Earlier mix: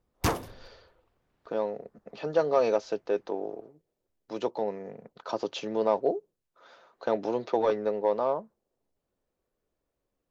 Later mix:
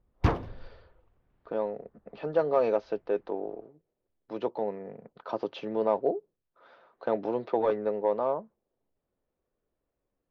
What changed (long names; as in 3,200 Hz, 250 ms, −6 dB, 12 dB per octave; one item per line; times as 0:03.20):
background: add low-shelf EQ 130 Hz +9 dB
master: add high-frequency loss of the air 290 metres